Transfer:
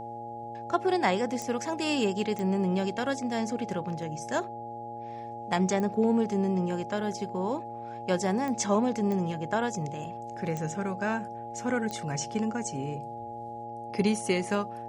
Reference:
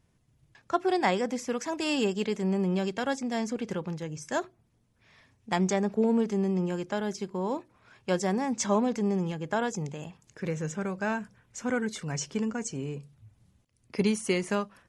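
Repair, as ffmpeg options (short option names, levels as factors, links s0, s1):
-af "adeclick=t=4,bandreject=f=115.9:t=h:w=4,bandreject=f=231.8:t=h:w=4,bandreject=f=347.7:t=h:w=4,bandreject=f=463.6:t=h:w=4,bandreject=f=579.5:t=h:w=4,bandreject=f=695.4:t=h:w=4,bandreject=f=830:w=30"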